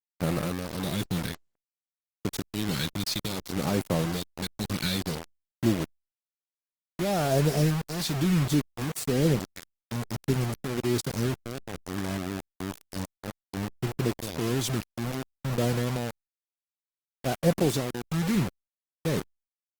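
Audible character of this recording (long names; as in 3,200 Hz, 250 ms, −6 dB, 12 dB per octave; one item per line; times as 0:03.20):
phaser sweep stages 2, 0.59 Hz, lowest notch 570–3,200 Hz
tremolo triangle 1.1 Hz, depth 70%
a quantiser's noise floor 6 bits, dither none
Opus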